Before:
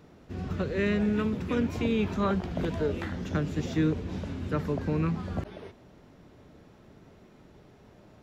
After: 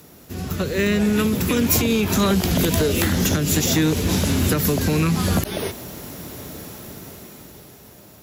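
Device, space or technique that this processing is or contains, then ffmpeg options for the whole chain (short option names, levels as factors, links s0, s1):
FM broadcast chain: -filter_complex "[0:a]highpass=48,dynaudnorm=f=290:g=11:m=4.22,acrossover=split=550|2000[s0][s1][s2];[s0]acompressor=threshold=0.0891:ratio=4[s3];[s1]acompressor=threshold=0.0178:ratio=4[s4];[s2]acompressor=threshold=0.0158:ratio=4[s5];[s3][s4][s5]amix=inputs=3:normalize=0,aemphasis=mode=production:type=50fm,alimiter=limit=0.168:level=0:latency=1:release=186,asoftclip=type=hard:threshold=0.112,lowpass=f=15000:w=0.5412,lowpass=f=15000:w=1.3066,aemphasis=mode=production:type=50fm,volume=2.11"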